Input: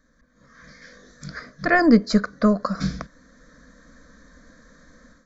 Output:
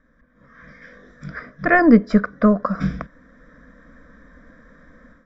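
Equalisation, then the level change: polynomial smoothing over 25 samples; +3.0 dB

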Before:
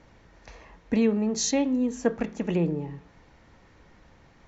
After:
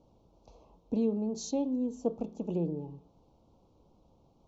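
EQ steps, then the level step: Butterworth band-stop 1800 Hz, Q 0.69; low shelf 110 Hz -5.5 dB; high shelf 2800 Hz -10 dB; -5.5 dB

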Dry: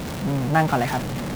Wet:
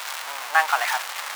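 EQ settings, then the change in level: HPF 950 Hz 24 dB/oct; +6.0 dB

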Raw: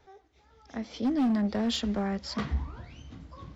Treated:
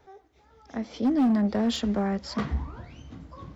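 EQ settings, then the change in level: low shelf 97 Hz -5.5 dB; bell 3900 Hz -5.5 dB 2.4 oct; +4.5 dB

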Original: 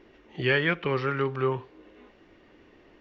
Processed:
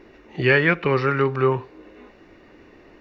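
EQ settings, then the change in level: notch 3200 Hz, Q 5.5; +7.0 dB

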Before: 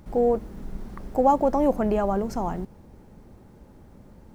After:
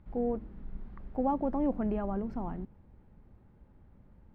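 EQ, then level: air absorption 460 m; bell 420 Hz -8 dB 2.9 oct; dynamic EQ 270 Hz, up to +8 dB, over -46 dBFS, Q 1.2; -5.5 dB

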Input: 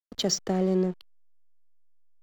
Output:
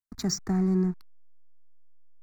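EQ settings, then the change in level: low shelf 190 Hz +8.5 dB; fixed phaser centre 1300 Hz, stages 4; 0.0 dB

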